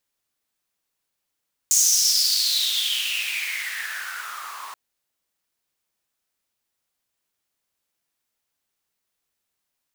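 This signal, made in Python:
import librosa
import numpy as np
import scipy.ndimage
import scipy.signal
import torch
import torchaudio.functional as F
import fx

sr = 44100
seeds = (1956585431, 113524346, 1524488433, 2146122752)

y = fx.riser_noise(sr, seeds[0], length_s=3.03, colour='pink', kind='highpass', start_hz=6800.0, end_hz=1000.0, q=7.4, swell_db=-21.5, law='exponential')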